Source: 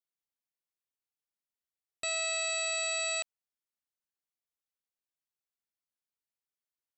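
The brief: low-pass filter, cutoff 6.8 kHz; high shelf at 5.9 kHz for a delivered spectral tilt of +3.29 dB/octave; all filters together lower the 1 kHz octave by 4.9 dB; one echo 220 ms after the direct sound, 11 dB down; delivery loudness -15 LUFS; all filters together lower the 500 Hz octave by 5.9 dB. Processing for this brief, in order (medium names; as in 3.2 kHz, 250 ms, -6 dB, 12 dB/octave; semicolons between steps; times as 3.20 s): low-pass 6.8 kHz; peaking EQ 500 Hz -5.5 dB; peaking EQ 1 kHz -6 dB; treble shelf 5.9 kHz -9 dB; delay 220 ms -11 dB; trim +20 dB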